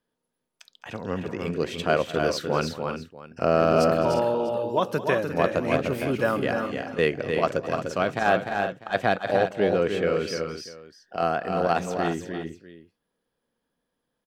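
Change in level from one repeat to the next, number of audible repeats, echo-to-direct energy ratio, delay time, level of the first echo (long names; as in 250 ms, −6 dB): repeats not evenly spaced, 4, −4.0 dB, 209 ms, −17.5 dB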